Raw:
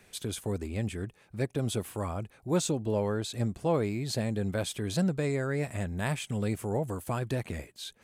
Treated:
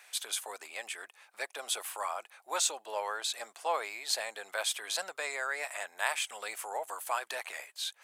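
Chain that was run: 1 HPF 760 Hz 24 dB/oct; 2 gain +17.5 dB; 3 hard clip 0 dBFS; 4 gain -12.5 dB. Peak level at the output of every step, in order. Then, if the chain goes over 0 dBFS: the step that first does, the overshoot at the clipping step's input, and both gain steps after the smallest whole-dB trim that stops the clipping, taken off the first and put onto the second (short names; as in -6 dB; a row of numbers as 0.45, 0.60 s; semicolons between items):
-20.0, -2.5, -2.5, -15.0 dBFS; no overload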